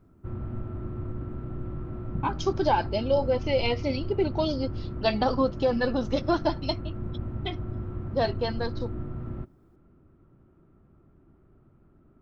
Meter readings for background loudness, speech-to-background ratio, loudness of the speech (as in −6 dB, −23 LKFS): −36.0 LKFS, 8.0 dB, −28.0 LKFS